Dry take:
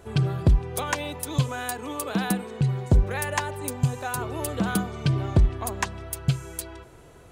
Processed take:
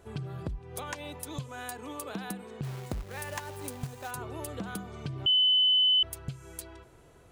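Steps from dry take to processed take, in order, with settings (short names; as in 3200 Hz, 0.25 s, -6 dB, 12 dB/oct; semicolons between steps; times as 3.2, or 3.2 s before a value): compressor 10:1, threshold -26 dBFS, peak gain reduction 12.5 dB; 2.63–4.11 companded quantiser 4-bit; 5.26–6.03 bleep 3020 Hz -13 dBFS; gain -7 dB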